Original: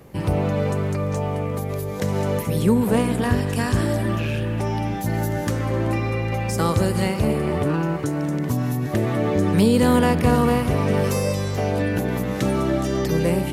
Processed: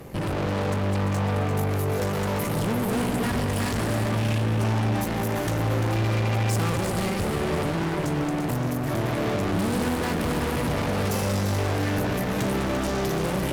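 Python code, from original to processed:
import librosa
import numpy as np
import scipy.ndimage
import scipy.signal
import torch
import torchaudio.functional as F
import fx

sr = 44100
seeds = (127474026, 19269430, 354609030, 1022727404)

p1 = fx.tube_stage(x, sr, drive_db=34.0, bias=0.7)
p2 = p1 + fx.echo_alternate(p1, sr, ms=172, hz=880.0, feedback_pct=74, wet_db=-5.5, dry=0)
y = p2 * 10.0 ** (8.5 / 20.0)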